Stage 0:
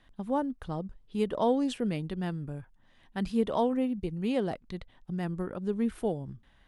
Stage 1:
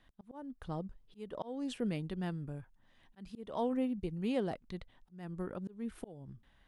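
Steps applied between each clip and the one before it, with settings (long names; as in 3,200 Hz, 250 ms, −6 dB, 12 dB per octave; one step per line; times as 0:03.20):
volume swells 369 ms
level −4.5 dB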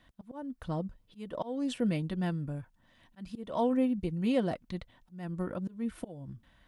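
notch comb filter 410 Hz
level +6 dB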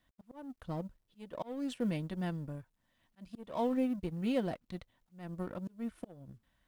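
mu-law and A-law mismatch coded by A
level −3 dB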